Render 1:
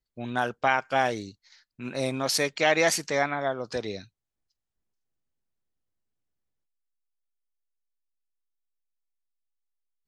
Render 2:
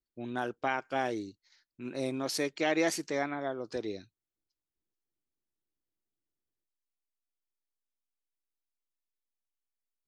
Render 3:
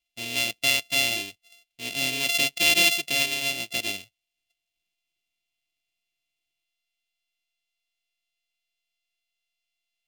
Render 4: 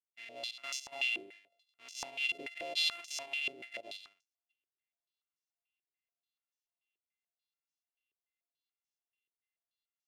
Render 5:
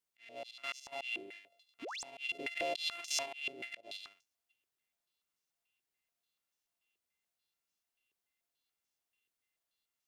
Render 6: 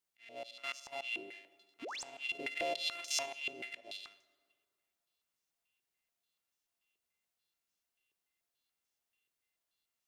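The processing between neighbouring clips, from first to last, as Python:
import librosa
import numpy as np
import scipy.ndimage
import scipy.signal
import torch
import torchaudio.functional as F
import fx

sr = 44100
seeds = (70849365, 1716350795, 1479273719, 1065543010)

y1 = fx.peak_eq(x, sr, hz=330.0, db=11.0, octaves=0.73)
y1 = y1 * 10.0 ** (-9.0 / 20.0)
y2 = np.r_[np.sort(y1[:len(y1) // 64 * 64].reshape(-1, 64), axis=1).ravel(), y1[len(y1) // 64 * 64:]]
y2 = fx.high_shelf_res(y2, sr, hz=1900.0, db=12.5, q=3.0)
y2 = y2 * 10.0 ** (-1.0 / 20.0)
y3 = y2 + 10.0 ** (-13.5 / 20.0) * np.pad(y2, (int(167 * sr / 1000.0), 0))[:len(y2)]
y3 = fx.filter_held_bandpass(y3, sr, hz=6.9, low_hz=390.0, high_hz=6000.0)
y3 = y3 * 10.0 ** (-4.0 / 20.0)
y4 = fx.auto_swell(y3, sr, attack_ms=364.0)
y4 = fx.spec_paint(y4, sr, seeds[0], shape='rise', start_s=1.82, length_s=0.21, low_hz=230.0, high_hz=9200.0, level_db=-49.0)
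y4 = y4 * 10.0 ** (6.0 / 20.0)
y5 = fx.rev_plate(y4, sr, seeds[1], rt60_s=2.0, hf_ratio=0.6, predelay_ms=0, drr_db=16.5)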